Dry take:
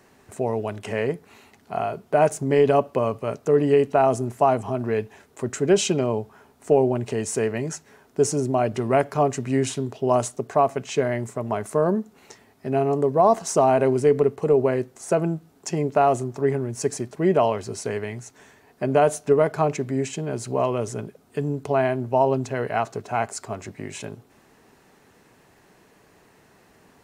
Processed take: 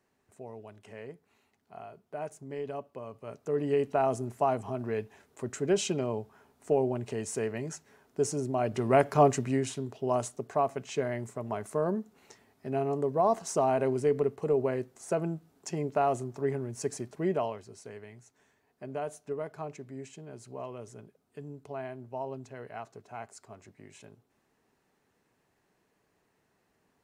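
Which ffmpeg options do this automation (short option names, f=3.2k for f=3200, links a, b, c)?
-af "volume=-0.5dB,afade=t=in:st=3.07:d=0.81:silence=0.281838,afade=t=in:st=8.55:d=0.72:silence=0.398107,afade=t=out:st=9.27:d=0.35:silence=0.398107,afade=t=out:st=17.2:d=0.46:silence=0.354813"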